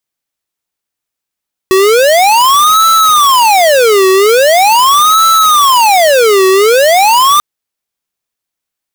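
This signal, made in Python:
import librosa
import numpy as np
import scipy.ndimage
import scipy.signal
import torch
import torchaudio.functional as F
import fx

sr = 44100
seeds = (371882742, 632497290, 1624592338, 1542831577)

y = fx.siren(sr, length_s=5.69, kind='wail', low_hz=377.0, high_hz=1320.0, per_s=0.42, wave='square', level_db=-6.5)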